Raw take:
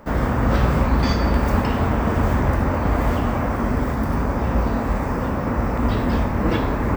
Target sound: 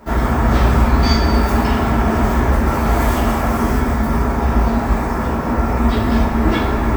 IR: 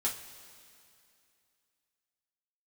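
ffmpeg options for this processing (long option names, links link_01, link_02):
-filter_complex "[0:a]asetnsamples=nb_out_samples=441:pad=0,asendcmd='2.66 equalizer g 11;3.79 equalizer g 3.5',equalizer=frequency=12000:width_type=o:width=2.3:gain=4[link_01];[1:a]atrim=start_sample=2205[link_02];[link_01][link_02]afir=irnorm=-1:irlink=0"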